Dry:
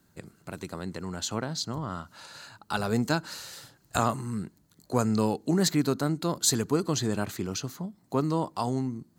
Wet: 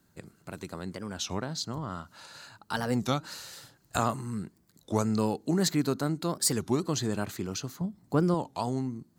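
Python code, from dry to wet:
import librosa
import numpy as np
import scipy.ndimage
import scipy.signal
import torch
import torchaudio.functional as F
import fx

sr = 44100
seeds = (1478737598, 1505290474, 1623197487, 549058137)

y = fx.low_shelf(x, sr, hz=200.0, db=10.5, at=(7.81, 8.37))
y = fx.record_warp(y, sr, rpm=33.33, depth_cents=250.0)
y = F.gain(torch.from_numpy(y), -2.0).numpy()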